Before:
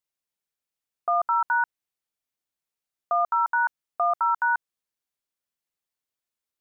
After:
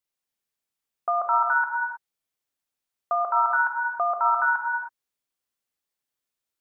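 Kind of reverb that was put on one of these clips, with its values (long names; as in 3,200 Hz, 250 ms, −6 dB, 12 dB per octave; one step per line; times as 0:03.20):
reverb whose tail is shaped and stops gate 340 ms flat, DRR 2 dB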